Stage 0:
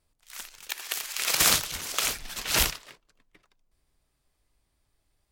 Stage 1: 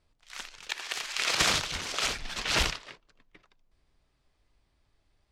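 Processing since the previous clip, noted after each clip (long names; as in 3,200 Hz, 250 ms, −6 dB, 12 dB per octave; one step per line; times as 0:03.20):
low-pass filter 5,100 Hz 12 dB per octave
brickwall limiter −15.5 dBFS, peak gain reduction 8.5 dB
level +3 dB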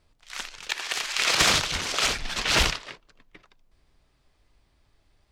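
soft clipping −15.5 dBFS, distortion −20 dB
level +6 dB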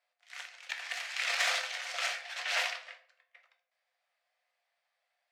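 Chebyshev high-pass with heavy ripple 500 Hz, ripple 9 dB
rectangular room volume 53 cubic metres, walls mixed, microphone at 0.39 metres
level −6 dB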